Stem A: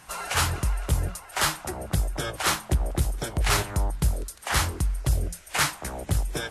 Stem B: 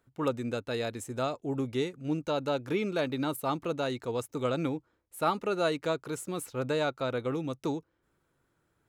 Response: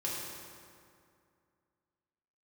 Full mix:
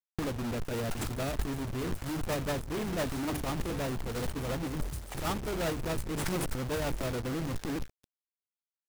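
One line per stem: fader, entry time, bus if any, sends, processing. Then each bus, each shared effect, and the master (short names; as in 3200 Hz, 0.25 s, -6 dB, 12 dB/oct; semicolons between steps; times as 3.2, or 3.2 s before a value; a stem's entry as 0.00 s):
-10.0 dB, 0.65 s, no send, echo send -19.5 dB, auto duck -8 dB, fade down 1.50 s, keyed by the second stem
+3.0 dB, 0.00 s, no send, no echo send, bell 3700 Hz -9 dB 0.32 oct; notches 50/100/150/200/250/300/350/400/450/500 Hz; Schmitt trigger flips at -39 dBFS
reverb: off
echo: feedback echo 0.253 s, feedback 47%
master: low shelf 320 Hz +7 dB; negative-ratio compressor -31 dBFS, ratio -0.5; companded quantiser 4-bit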